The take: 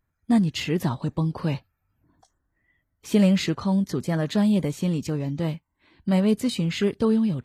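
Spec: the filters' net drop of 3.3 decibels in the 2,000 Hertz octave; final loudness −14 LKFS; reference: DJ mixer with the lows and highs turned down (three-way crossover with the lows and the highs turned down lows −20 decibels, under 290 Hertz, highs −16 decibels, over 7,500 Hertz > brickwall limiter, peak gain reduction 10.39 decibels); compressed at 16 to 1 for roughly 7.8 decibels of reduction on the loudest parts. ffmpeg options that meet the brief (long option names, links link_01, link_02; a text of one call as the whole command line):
ffmpeg -i in.wav -filter_complex "[0:a]equalizer=frequency=2000:width_type=o:gain=-4,acompressor=threshold=-22dB:ratio=16,acrossover=split=290 7500:gain=0.1 1 0.158[link_01][link_02][link_03];[link_01][link_02][link_03]amix=inputs=3:normalize=0,volume=25dB,alimiter=limit=-4.5dB:level=0:latency=1" out.wav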